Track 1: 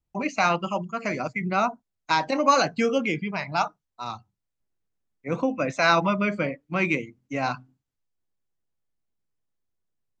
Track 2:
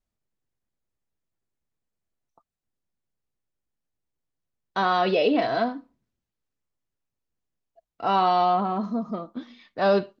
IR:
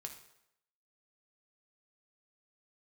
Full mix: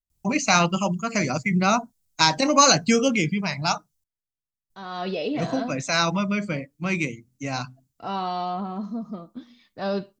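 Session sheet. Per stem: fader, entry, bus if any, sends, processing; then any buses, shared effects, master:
+1.0 dB, 0.10 s, muted 4.04–4.7, no send, high shelf 4200 Hz +9 dB; auto duck -6 dB, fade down 1.90 s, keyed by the second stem
4.75 s -19 dB -> 5.03 s -8 dB, 0.00 s, no send, dry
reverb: off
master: tone controls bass +9 dB, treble +9 dB

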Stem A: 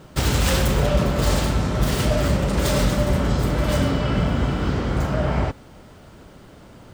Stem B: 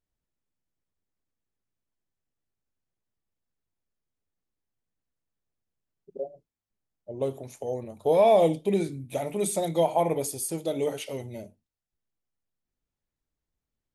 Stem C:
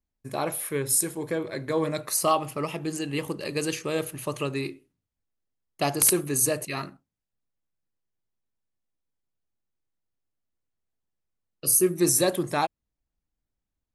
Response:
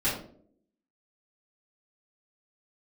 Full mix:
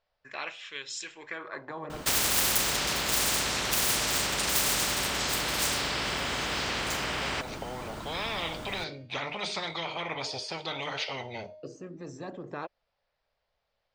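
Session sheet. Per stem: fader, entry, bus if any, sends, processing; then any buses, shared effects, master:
-2.5 dB, 1.90 s, no send, dry
+2.0 dB, 0.00 s, no send, elliptic low-pass 4900 Hz, stop band 80 dB; resonant low shelf 420 Hz -11 dB, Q 3; de-hum 308.8 Hz, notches 35
0.0 dB, 0.00 s, no send, notch 2200 Hz; wah 0.31 Hz 270–3300 Hz, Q 3; rippled Chebyshev low-pass 7600 Hz, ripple 3 dB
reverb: off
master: spectral compressor 10:1

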